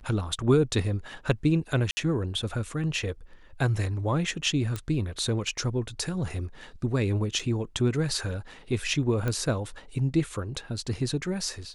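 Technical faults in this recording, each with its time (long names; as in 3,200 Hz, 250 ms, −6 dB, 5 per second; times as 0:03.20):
0:01.91–0:01.97: drop-out 60 ms
0:04.76: click −18 dBFS
0:07.39–0:07.40: drop-out 5.1 ms
0:09.28: click −16 dBFS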